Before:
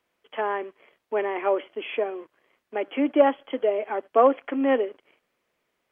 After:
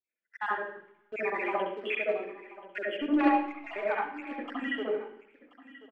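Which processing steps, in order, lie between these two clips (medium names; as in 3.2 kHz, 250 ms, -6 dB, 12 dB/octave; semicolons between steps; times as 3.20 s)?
random holes in the spectrogram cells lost 66%; high-pass 820 Hz 6 dB/octave; gate -60 dBFS, range -8 dB; waveshaping leveller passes 2; distance through air 130 m; delay 1031 ms -18 dB; reverberation RT60 0.70 s, pre-delay 66 ms, DRR -2.5 dB; trim -4 dB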